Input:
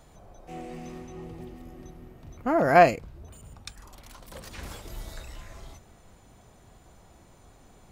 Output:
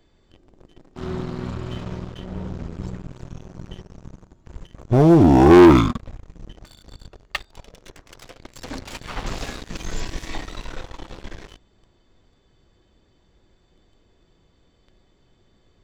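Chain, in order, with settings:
wrong playback speed 15 ips tape played at 7.5 ips
leveller curve on the samples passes 3
level +1 dB

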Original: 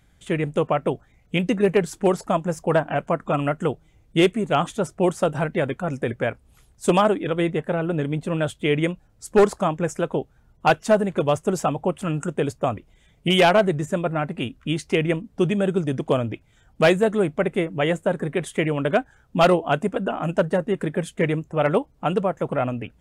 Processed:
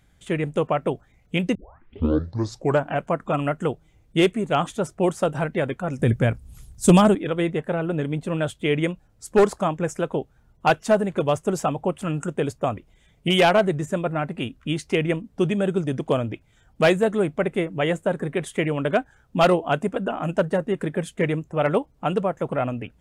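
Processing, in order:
0:01.55: tape start 1.33 s
0:05.99–0:07.15: bass and treble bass +14 dB, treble +9 dB
level −1 dB

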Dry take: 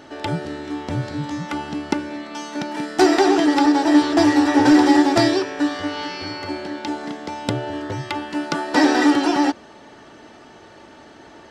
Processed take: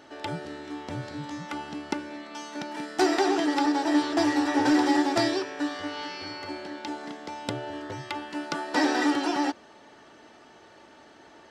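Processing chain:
low-shelf EQ 260 Hz −6.5 dB
level −6.5 dB

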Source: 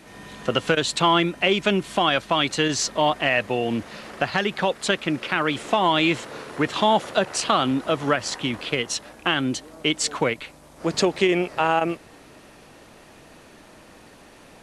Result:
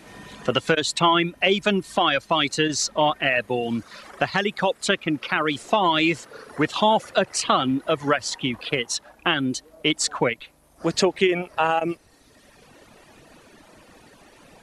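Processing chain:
reverb reduction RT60 1.3 s
level +1 dB

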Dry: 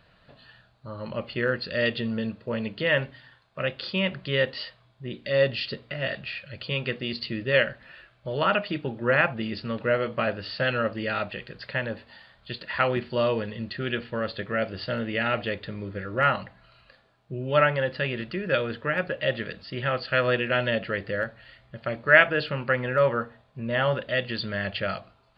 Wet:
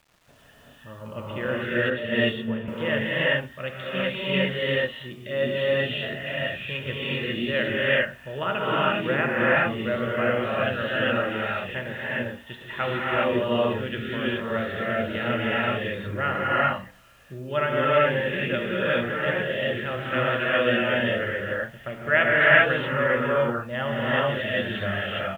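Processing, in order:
downsampling to 8,000 Hz
reverb whose tail is shaped and stops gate 440 ms rising, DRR −7 dB
bit reduction 9 bits
0:01.90–0:02.68: multiband upward and downward expander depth 100%
level −5 dB

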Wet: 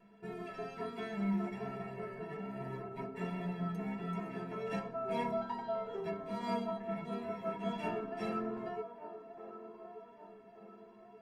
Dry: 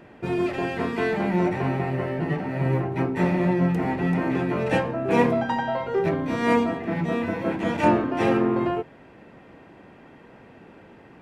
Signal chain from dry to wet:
stiff-string resonator 200 Hz, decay 0.26 s, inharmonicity 0.03
pitch vibrato 1.3 Hz 14 cents
flanger 0.24 Hz, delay 5.9 ms, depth 3.8 ms, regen −50%
on a send: delay with a band-pass on its return 1,178 ms, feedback 43%, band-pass 630 Hz, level −9 dB
on the sum: level +2.5 dB

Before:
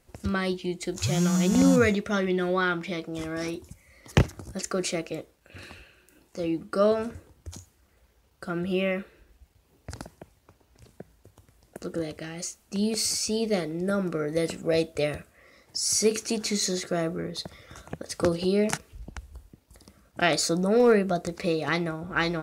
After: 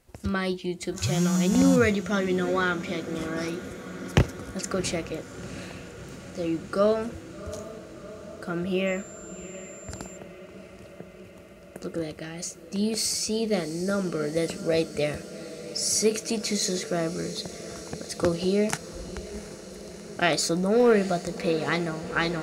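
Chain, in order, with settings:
feedback delay with all-pass diffusion 727 ms, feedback 75%, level −15 dB
0:08.86–0:10.16: steady tone 7,300 Hz −45 dBFS

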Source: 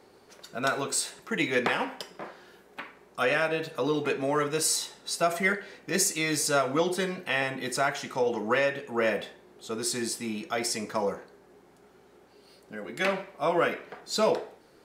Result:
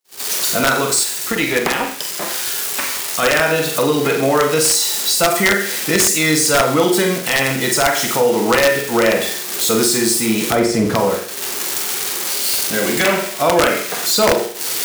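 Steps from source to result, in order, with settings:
spike at every zero crossing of −26.5 dBFS
camcorder AGC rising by 19 dB per second
noise gate −32 dBFS, range −53 dB
0:10.50–0:10.96: spectral tilt −3.5 dB per octave
on a send: flutter between parallel walls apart 7.7 metres, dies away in 0.45 s
on the sum: wrap-around overflow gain 14 dB
in parallel at −1.5 dB: brickwall limiter −22 dBFS, peak gain reduction 8 dB
0:01.03–0:03.23: on the sum: power curve on the samples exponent 1.4
high-shelf EQ 11,000 Hz −4 dB
level +7 dB

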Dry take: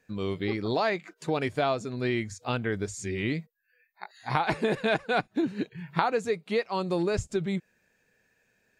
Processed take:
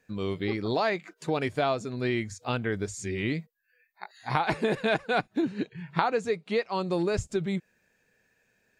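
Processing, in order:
0:05.48–0:06.93: low-pass filter 8,600 Hz 12 dB per octave

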